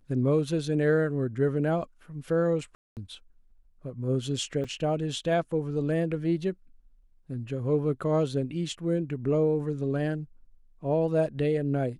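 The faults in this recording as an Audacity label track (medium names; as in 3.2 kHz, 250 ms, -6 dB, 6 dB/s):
2.750000	2.970000	dropout 218 ms
4.640000	4.640000	dropout 4.8 ms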